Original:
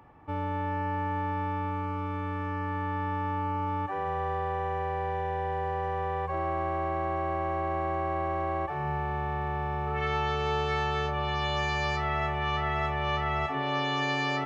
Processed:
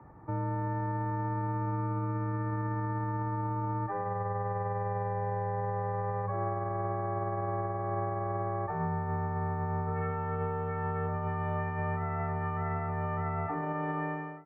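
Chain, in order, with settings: fade out at the end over 0.70 s; steep low-pass 1.9 kHz 36 dB/octave; tilt EQ -1.5 dB/octave; peak limiter -25 dBFS, peak gain reduction 8.5 dB; frequency shift +21 Hz

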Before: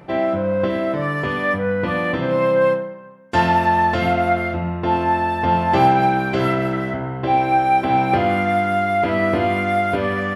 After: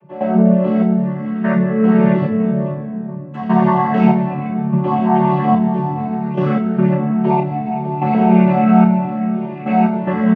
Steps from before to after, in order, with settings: vocoder on a held chord major triad, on D3; in parallel at +2 dB: peak limiter -14 dBFS, peak gain reduction 10 dB; on the sum: trance gate ".xxx...xxxx....x" 73 bpm -12 dB; reverberation RT60 3.5 s, pre-delay 3 ms, DRR 4 dB; endless flanger 2.9 ms -1.9 Hz; trim -7 dB

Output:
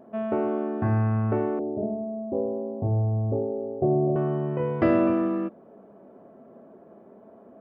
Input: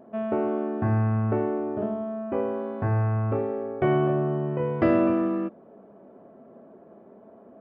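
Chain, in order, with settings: 1.59–4.16 s: steep low-pass 750 Hz 36 dB/octave

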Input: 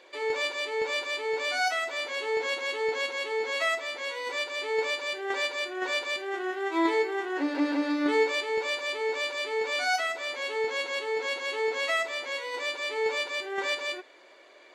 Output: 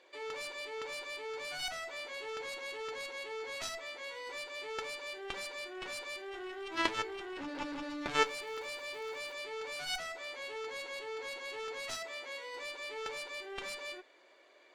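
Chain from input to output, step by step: 8.25–9.33 s: crackle 500 per s -40 dBFS; Chebyshev shaper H 3 -7 dB, 6 -42 dB, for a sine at -14 dBFS; 11.96–12.52 s: high-pass 70 Hz -> 170 Hz 12 dB/octave; trim +1 dB

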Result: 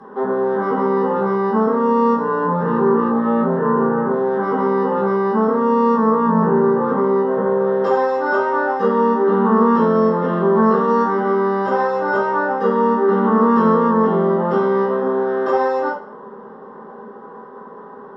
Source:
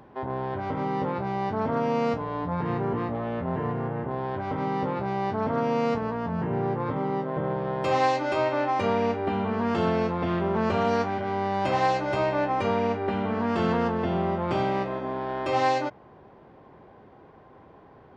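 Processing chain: peaking EQ 110 Hz -8 dB 1.5 oct; compression, threshold -28 dBFS, peak gain reduction 9.5 dB; distance through air 51 m; static phaser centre 470 Hz, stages 8; reverberation RT60 0.45 s, pre-delay 3 ms, DRR -9 dB

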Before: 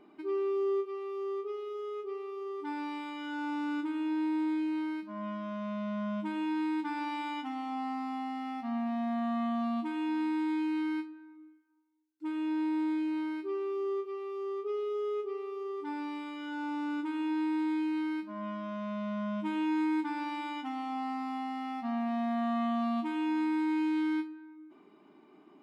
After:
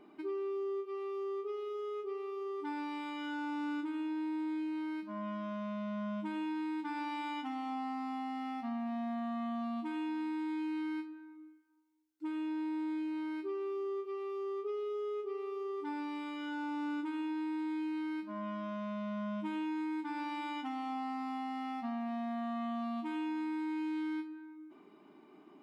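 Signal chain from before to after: compression, threshold -35 dBFS, peak gain reduction 7.5 dB

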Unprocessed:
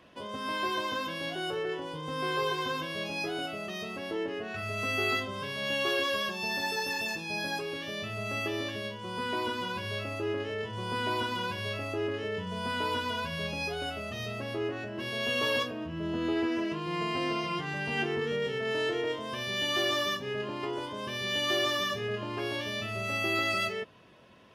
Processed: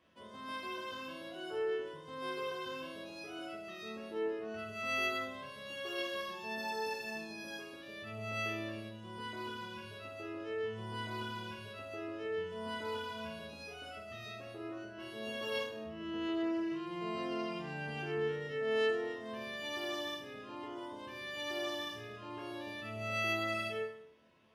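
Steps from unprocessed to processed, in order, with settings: chord resonator D2 minor, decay 0.67 s; trim +4.5 dB

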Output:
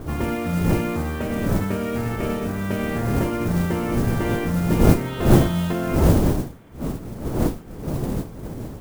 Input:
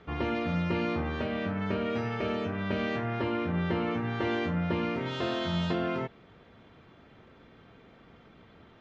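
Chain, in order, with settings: wind noise 330 Hz -30 dBFS; tone controls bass +4 dB, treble -14 dB; modulation noise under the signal 20 dB; trim +4 dB

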